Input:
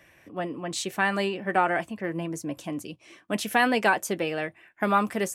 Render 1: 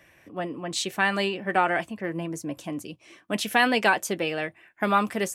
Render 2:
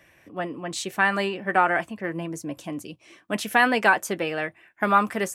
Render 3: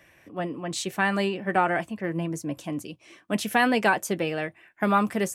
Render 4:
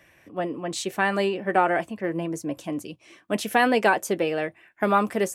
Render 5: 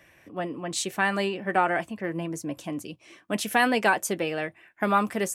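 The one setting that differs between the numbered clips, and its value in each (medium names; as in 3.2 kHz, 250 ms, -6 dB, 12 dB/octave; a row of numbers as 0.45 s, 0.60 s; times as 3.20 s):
dynamic bell, frequency: 3.5 kHz, 1.4 kHz, 140 Hz, 460 Hz, 9.3 kHz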